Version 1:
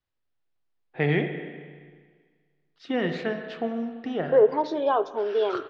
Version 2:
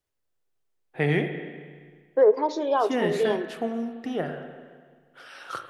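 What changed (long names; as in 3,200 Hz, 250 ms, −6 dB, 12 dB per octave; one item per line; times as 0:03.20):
second voice: entry −2.15 s
master: remove low-pass filter 4,700 Hz 24 dB per octave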